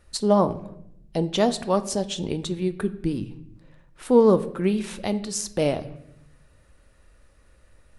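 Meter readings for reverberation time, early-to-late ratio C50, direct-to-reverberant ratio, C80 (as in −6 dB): 0.80 s, 15.5 dB, 11.0 dB, 18.0 dB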